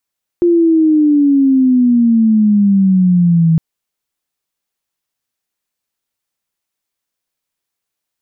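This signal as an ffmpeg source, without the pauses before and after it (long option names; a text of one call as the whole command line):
ffmpeg -f lavfi -i "aevalsrc='0.447*sin(2*PI*350*3.16/log(160/350)*(exp(log(160/350)*t/3.16)-1))':duration=3.16:sample_rate=44100" out.wav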